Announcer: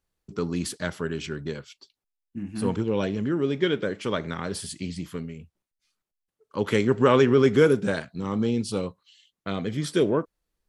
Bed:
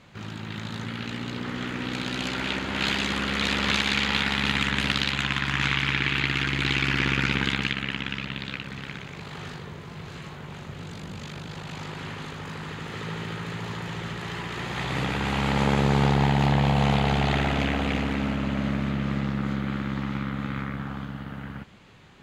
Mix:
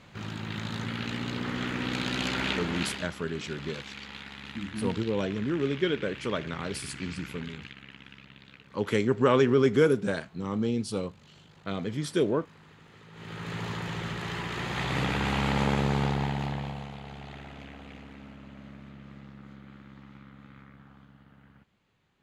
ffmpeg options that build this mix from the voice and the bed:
-filter_complex "[0:a]adelay=2200,volume=0.668[s0];[1:a]volume=7.08,afade=t=out:st=2.46:d=0.62:silence=0.125893,afade=t=in:st=13.12:d=0.47:silence=0.133352,afade=t=out:st=15.19:d=1.7:silence=0.112202[s1];[s0][s1]amix=inputs=2:normalize=0"

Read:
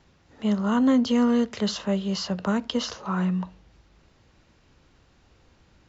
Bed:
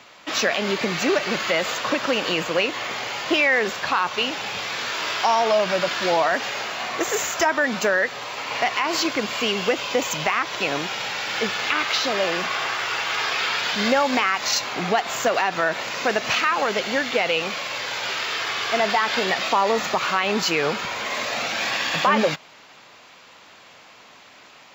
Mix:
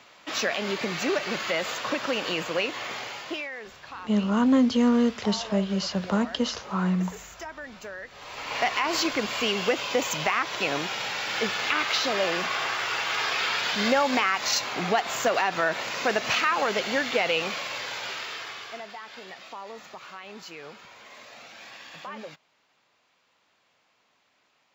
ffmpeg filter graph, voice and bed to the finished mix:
-filter_complex "[0:a]adelay=3650,volume=1[s0];[1:a]volume=3.35,afade=t=out:st=2.95:d=0.55:silence=0.211349,afade=t=in:st=8.08:d=0.52:silence=0.158489,afade=t=out:st=17.48:d=1.38:silence=0.133352[s1];[s0][s1]amix=inputs=2:normalize=0"

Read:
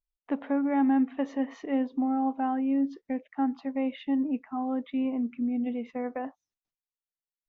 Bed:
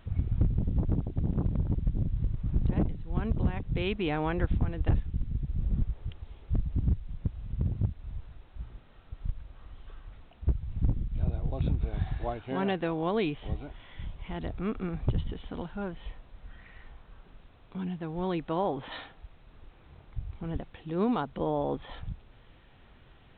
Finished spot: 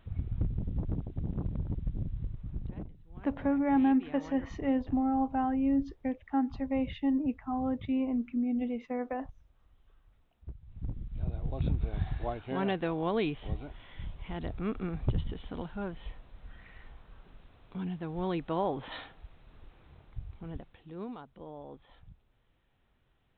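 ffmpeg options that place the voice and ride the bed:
-filter_complex "[0:a]adelay=2950,volume=0.841[s0];[1:a]volume=3.16,afade=t=out:st=2.06:d=0.87:silence=0.266073,afade=t=in:st=10.62:d=1.06:silence=0.16788,afade=t=out:st=19.64:d=1.55:silence=0.188365[s1];[s0][s1]amix=inputs=2:normalize=0"

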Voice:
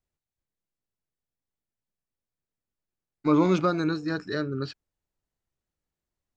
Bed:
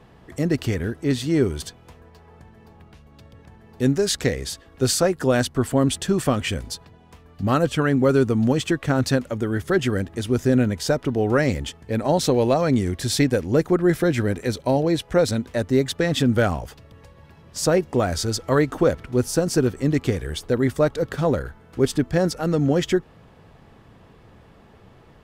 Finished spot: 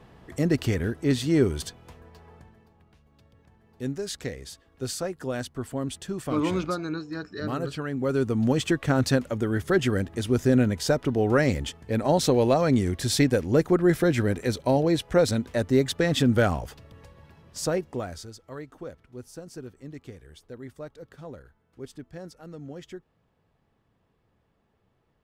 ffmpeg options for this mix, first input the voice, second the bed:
-filter_complex "[0:a]adelay=3050,volume=0.562[s0];[1:a]volume=2.51,afade=t=out:st=2.28:d=0.41:silence=0.316228,afade=t=in:st=7.92:d=0.72:silence=0.334965,afade=t=out:st=17.02:d=1.32:silence=0.11885[s1];[s0][s1]amix=inputs=2:normalize=0"

